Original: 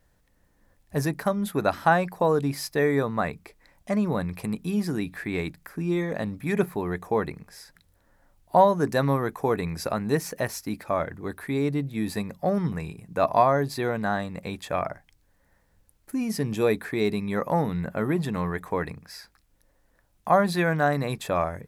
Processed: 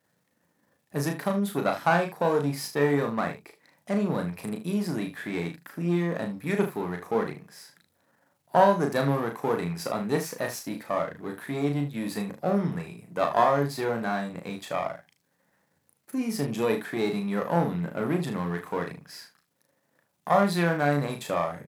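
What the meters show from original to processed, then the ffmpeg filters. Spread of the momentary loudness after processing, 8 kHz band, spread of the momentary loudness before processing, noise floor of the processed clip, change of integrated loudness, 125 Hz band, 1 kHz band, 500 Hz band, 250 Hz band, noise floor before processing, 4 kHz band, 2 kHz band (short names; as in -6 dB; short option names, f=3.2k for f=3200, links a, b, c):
12 LU, -1.0 dB, 11 LU, -73 dBFS, -1.5 dB, -1.5 dB, -1.5 dB, -1.5 dB, -1.0 dB, -66 dBFS, -0.5 dB, -1.5 dB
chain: -filter_complex "[0:a]aeval=exprs='if(lt(val(0),0),0.447*val(0),val(0))':c=same,highpass=f=130:w=0.5412,highpass=f=130:w=1.3066,asplit=2[a][b];[b]aecho=0:1:35|76:0.562|0.251[c];[a][c]amix=inputs=2:normalize=0"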